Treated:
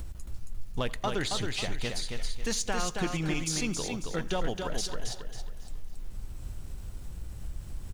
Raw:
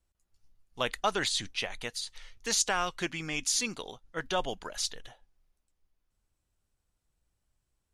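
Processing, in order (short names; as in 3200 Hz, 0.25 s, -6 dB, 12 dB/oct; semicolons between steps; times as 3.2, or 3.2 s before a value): in parallel at -1.5 dB: upward compressor, threshold -35 dBFS; on the sum: low shelf 120 Hz +5.5 dB; compressor 2:1, threshold -45 dBFS, peak gain reduction 15 dB; low shelf 410 Hz +10 dB; outdoor echo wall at 15 m, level -22 dB; on a send at -22 dB: reverb RT60 2.1 s, pre-delay 4 ms; on the sum: sample leveller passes 1; lo-fi delay 0.273 s, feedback 35%, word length 10-bit, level -4.5 dB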